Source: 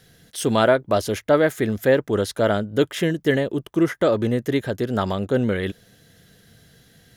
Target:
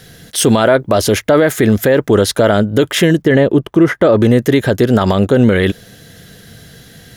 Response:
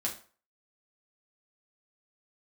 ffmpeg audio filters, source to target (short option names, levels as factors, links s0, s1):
-filter_complex "[0:a]asettb=1/sr,asplit=3[s0][s1][s2];[s0]atrim=end=3.224[s3];[s1]atrim=start=3.22:end=4.21,asetpts=PTS-STARTPTS,afade=t=in:d=0.004:c=qsin,afade=t=out:st=0.986:d=0.004:c=qsin,highshelf=f=3800:g=-11.5[s4];[s2]atrim=start=4.206[s5];[s3][s4]acrossfade=d=0.004:c1=hsin:c2=qsin[s6];[s6][s5]acrossfade=d=0.004:c1=qsin:c2=hsin,alimiter=level_in=5.62:limit=0.891:release=50:level=0:latency=1,volume=0.891"